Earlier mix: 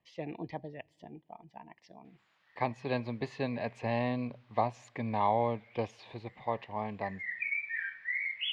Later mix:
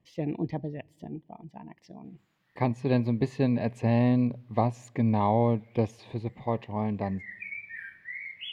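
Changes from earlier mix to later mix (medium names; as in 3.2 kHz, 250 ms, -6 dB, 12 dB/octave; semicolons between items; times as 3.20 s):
background -5.0 dB; master: remove three-band isolator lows -12 dB, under 560 Hz, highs -17 dB, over 6 kHz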